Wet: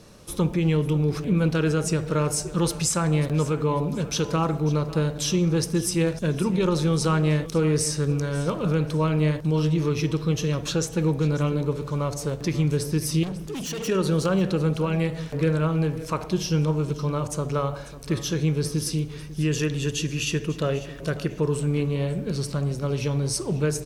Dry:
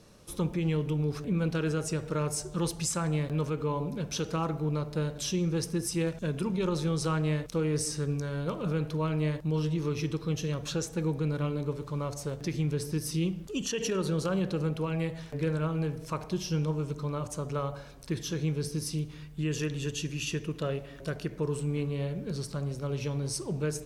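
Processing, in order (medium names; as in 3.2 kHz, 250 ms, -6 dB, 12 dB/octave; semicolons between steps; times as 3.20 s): 13.23–13.88 s: hard clipper -37 dBFS, distortion -21 dB; on a send: feedback delay 545 ms, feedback 30%, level -17 dB; on the sum: trim +7 dB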